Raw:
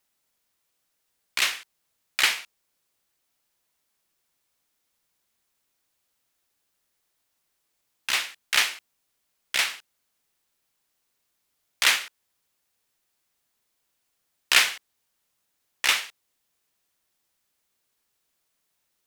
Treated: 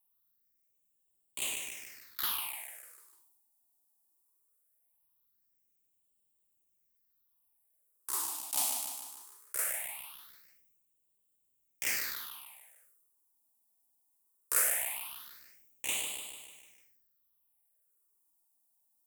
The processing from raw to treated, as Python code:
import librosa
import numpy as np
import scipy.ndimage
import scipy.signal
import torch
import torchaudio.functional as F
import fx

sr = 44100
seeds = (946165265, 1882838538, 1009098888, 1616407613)

y = fx.band_shelf(x, sr, hz=3000.0, db=-10.5, octaves=2.6)
y = fx.echo_feedback(y, sr, ms=149, feedback_pct=52, wet_db=-11.5)
y = fx.phaser_stages(y, sr, stages=6, low_hz=120.0, high_hz=1500.0, hz=0.2, feedback_pct=40)
y = fx.high_shelf(y, sr, hz=9500.0, db=12.0)
y = fx.sustainer(y, sr, db_per_s=36.0)
y = F.gain(torch.from_numpy(y), -6.5).numpy()